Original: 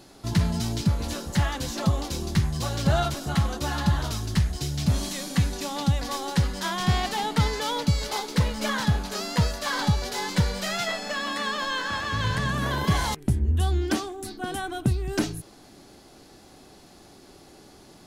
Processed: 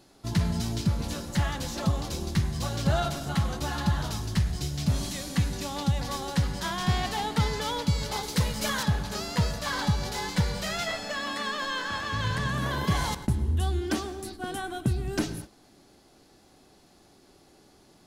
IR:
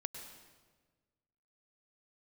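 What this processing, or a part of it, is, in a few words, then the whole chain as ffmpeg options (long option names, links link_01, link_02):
keyed gated reverb: -filter_complex "[0:a]asplit=3[link_01][link_02][link_03];[1:a]atrim=start_sample=2205[link_04];[link_02][link_04]afir=irnorm=-1:irlink=0[link_05];[link_03]apad=whole_len=796596[link_06];[link_05][link_06]sidechaingate=range=-33dB:threshold=-39dB:ratio=16:detection=peak,volume=-0.5dB[link_07];[link_01][link_07]amix=inputs=2:normalize=0,asettb=1/sr,asplit=3[link_08][link_09][link_10];[link_08]atrim=end=8.234[link_11];[link_09]atrim=start=8.23:end=8.83,asetpts=PTS-STARTPTS,afade=type=in:duration=0.004:curve=qsin,afade=type=out:start_time=0.596:duration=0.004:curve=qsin,aemphasis=mode=production:type=cd[link_12];[link_10]atrim=start=8.826[link_13];[link_11][link_12]acrossfade=duration=0.004:curve1=hsin:curve2=qsin[link_14];[link_14][link_13]acrossfade=duration=0.004:curve1=qsin:curve2=hsin,volume=-7.5dB"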